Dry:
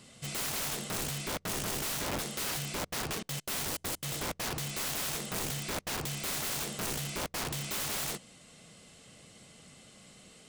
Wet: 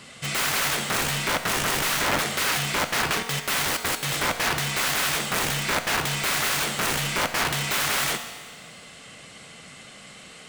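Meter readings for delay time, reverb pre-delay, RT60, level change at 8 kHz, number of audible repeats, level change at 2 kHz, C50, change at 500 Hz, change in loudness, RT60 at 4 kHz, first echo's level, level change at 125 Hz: none, 4 ms, 1.6 s, +8.0 dB, none, +15.5 dB, 9.0 dB, +9.5 dB, +10.5 dB, 1.6 s, none, +7.0 dB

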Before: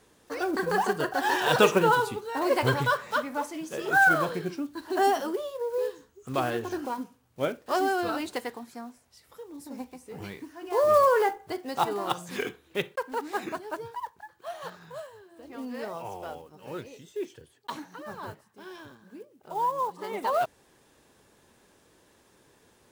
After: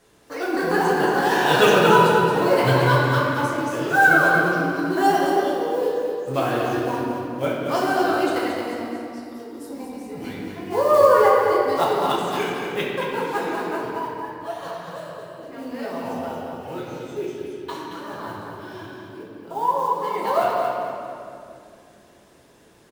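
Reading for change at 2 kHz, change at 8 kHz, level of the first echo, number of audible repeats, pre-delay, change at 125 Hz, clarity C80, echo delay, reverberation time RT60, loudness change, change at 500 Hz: +7.0 dB, +4.5 dB, -6.5 dB, 1, 6 ms, +10.5 dB, -0.5 dB, 0.226 s, 2.6 s, +7.0 dB, +8.0 dB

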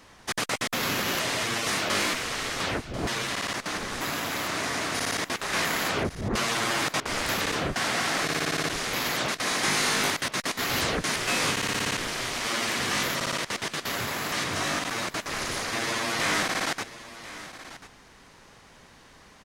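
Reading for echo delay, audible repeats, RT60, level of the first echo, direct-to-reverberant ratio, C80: 1.039 s, 1, none, -15.5 dB, none, none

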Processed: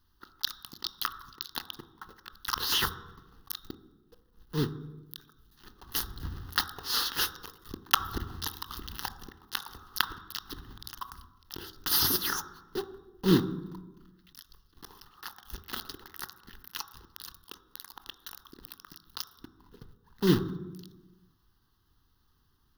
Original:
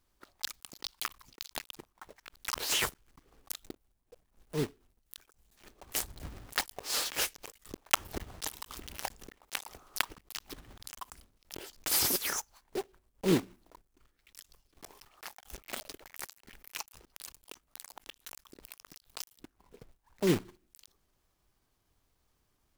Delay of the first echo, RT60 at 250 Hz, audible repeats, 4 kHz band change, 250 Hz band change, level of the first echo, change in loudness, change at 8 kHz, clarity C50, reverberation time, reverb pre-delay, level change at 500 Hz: none, 1.5 s, none, +4.5 dB, +4.5 dB, none, +3.0 dB, -2.5 dB, 14.0 dB, 1.1 s, 21 ms, +1.0 dB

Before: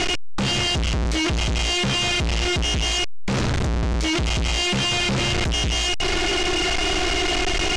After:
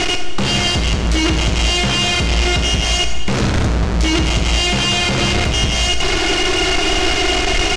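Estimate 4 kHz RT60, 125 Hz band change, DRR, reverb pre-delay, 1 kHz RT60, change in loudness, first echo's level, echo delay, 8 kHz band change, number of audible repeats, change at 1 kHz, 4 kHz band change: 1.7 s, +6.0 dB, 4.5 dB, 20 ms, 2.1 s, +5.5 dB, -12.0 dB, 72 ms, +5.5 dB, 1, +6.0 dB, +5.5 dB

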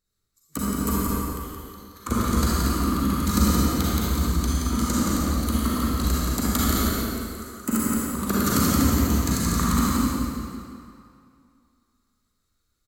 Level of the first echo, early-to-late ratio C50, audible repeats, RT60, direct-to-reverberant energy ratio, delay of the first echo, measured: -2.5 dB, -7.5 dB, 1, 2.4 s, -9.5 dB, 0.174 s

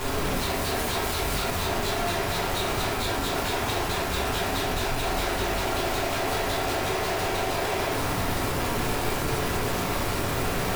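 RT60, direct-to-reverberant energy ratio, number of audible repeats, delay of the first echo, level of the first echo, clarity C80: 0.60 s, -6.0 dB, none, none, none, 6.5 dB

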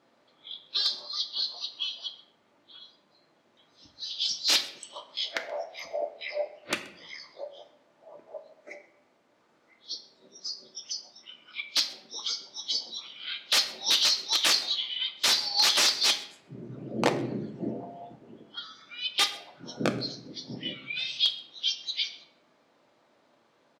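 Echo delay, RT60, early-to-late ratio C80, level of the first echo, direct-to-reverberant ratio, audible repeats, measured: 0.129 s, 0.65 s, 14.5 dB, -22.5 dB, 5.0 dB, 1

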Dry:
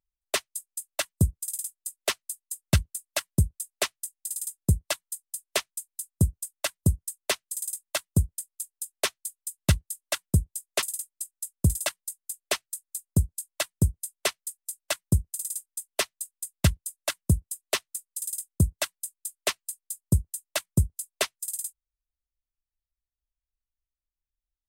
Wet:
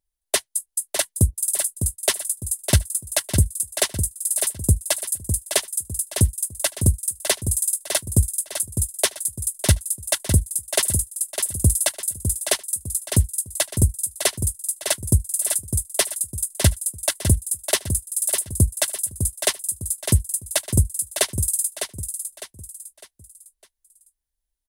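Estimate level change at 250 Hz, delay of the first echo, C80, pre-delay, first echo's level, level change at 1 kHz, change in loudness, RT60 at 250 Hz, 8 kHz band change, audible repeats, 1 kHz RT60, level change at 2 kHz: +3.0 dB, 0.605 s, none, none, -7.5 dB, +3.5 dB, +7.5 dB, none, +11.0 dB, 4, none, +3.5 dB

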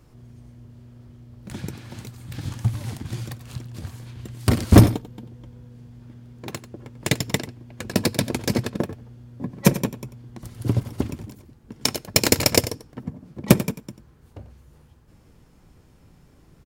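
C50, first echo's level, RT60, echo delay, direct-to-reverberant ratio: none, -14.0 dB, none, 92 ms, none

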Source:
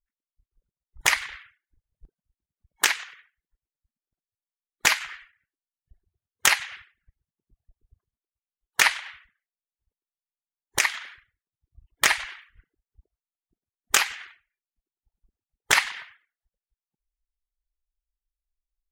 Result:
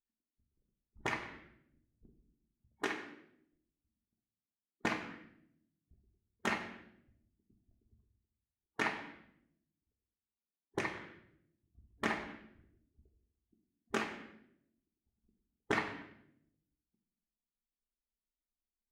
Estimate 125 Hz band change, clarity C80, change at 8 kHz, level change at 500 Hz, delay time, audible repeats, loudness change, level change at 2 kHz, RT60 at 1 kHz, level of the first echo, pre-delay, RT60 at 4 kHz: -0.5 dB, 11.5 dB, -28.0 dB, -1.5 dB, none, none, -16.0 dB, -15.5 dB, 0.60 s, none, 3 ms, 0.60 s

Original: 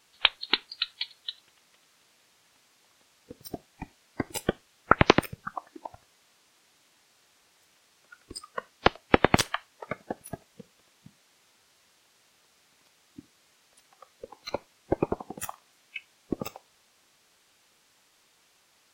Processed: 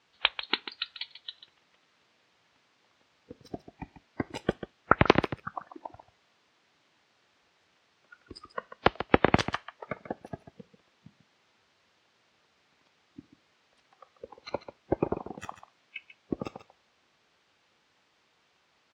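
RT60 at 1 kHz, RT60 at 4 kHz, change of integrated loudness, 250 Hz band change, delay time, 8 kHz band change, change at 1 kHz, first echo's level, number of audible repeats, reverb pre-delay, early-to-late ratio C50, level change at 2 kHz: none, none, -1.5 dB, -1.0 dB, 0.141 s, -13.5 dB, -1.5 dB, -12.0 dB, 1, none, none, -2.5 dB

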